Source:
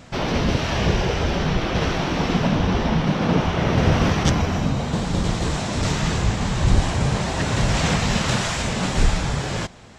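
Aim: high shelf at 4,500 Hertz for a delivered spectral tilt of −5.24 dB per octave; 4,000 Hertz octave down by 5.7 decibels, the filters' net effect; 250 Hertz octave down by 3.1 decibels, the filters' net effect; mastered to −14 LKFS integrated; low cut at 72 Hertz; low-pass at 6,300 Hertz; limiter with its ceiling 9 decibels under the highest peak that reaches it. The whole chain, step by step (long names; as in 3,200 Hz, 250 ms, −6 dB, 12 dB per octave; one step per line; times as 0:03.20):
high-pass filter 72 Hz
low-pass filter 6,300 Hz
parametric band 250 Hz −4.5 dB
parametric band 4,000 Hz −4 dB
high-shelf EQ 4,500 Hz −6 dB
level +13 dB
brickwall limiter −4.5 dBFS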